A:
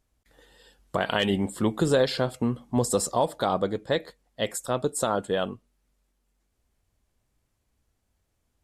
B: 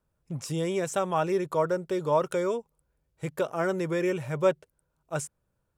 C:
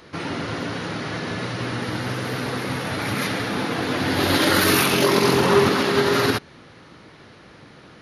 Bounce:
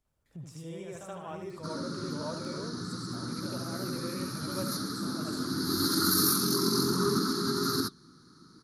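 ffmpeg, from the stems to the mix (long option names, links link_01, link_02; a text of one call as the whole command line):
ffmpeg -i stem1.wav -i stem2.wav -i stem3.wav -filter_complex "[0:a]acompressor=threshold=-33dB:ratio=6,volume=-4.5dB,asplit=2[link_01][link_02];[link_02]volume=-14dB[link_03];[1:a]adelay=50,volume=1dB,asplit=2[link_04][link_05];[link_05]volume=-12.5dB[link_06];[2:a]firequalizer=gain_entry='entry(110,0);entry(170,9);entry(360,6);entry(590,-20);entry(1300,8);entry(1900,-14);entry(2800,-24);entry(4200,12);entry(7500,10);entry(13000,14)':delay=0.05:min_phase=1,adelay=1500,volume=-10dB[link_07];[link_01][link_04]amix=inputs=2:normalize=0,acrossover=split=190[link_08][link_09];[link_09]acompressor=threshold=-56dB:ratio=1.5[link_10];[link_08][link_10]amix=inputs=2:normalize=0,alimiter=level_in=8.5dB:limit=-24dB:level=0:latency=1:release=328,volume=-8.5dB,volume=0dB[link_11];[link_03][link_06]amix=inputs=2:normalize=0,aecho=0:1:75|150|225|300|375:1|0.35|0.122|0.0429|0.015[link_12];[link_07][link_11][link_12]amix=inputs=3:normalize=0,flanger=delay=0.9:depth=7.6:regen=-75:speed=0.66:shape=sinusoidal" out.wav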